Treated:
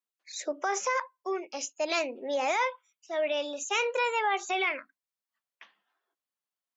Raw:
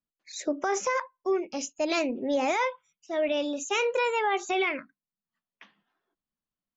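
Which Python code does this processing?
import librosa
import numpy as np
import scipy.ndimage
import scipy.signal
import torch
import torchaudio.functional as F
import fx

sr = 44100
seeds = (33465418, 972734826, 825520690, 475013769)

y = scipy.signal.sosfilt(scipy.signal.butter(2, 520.0, 'highpass', fs=sr, output='sos'), x)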